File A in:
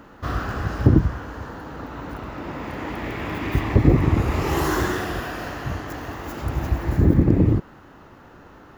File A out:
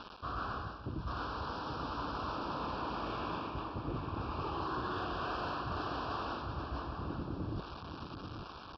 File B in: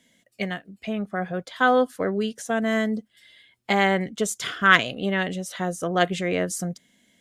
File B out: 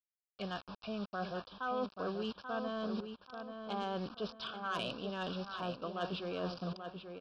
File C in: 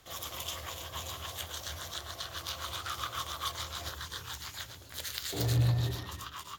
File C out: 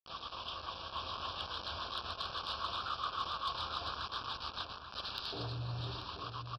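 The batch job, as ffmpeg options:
-filter_complex "[0:a]aeval=exprs='val(0)+0.00224*(sin(2*PI*50*n/s)+sin(2*PI*2*50*n/s)/2+sin(2*PI*3*50*n/s)/3+sin(2*PI*4*50*n/s)/4+sin(2*PI*5*50*n/s)/5)':c=same,aresample=11025,acrusher=bits=6:mix=0:aa=0.000001,aresample=44100,dynaudnorm=f=180:g=11:m=1.5,equalizer=f=1100:w=2.7:g=7,areverse,acompressor=threshold=0.0398:ratio=8,areverse,aeval=exprs='0.224*(cos(1*acos(clip(val(0)/0.224,-1,1)))-cos(1*PI/2))+0.0224*(cos(5*acos(clip(val(0)/0.224,-1,1)))-cos(5*PI/2))':c=same,asuperstop=centerf=2000:order=4:qfactor=2.1,lowshelf=f=400:g=-5.5,asplit=2[s0][s1];[s1]adelay=835,lowpass=f=3000:p=1,volume=0.447,asplit=2[s2][s3];[s3]adelay=835,lowpass=f=3000:p=1,volume=0.35,asplit=2[s4][s5];[s5]adelay=835,lowpass=f=3000:p=1,volume=0.35,asplit=2[s6][s7];[s7]adelay=835,lowpass=f=3000:p=1,volume=0.35[s8];[s0][s2][s4][s6][s8]amix=inputs=5:normalize=0,volume=0.422"

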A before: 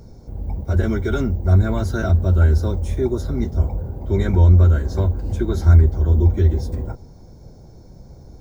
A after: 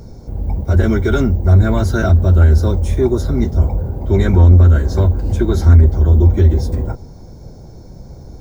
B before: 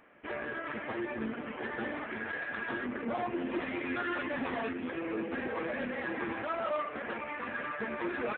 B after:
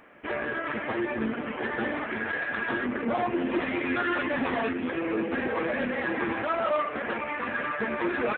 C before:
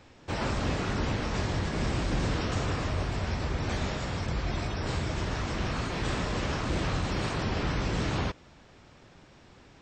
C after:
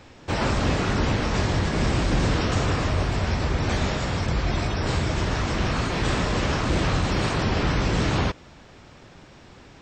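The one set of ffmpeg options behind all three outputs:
-af "acontrast=76"

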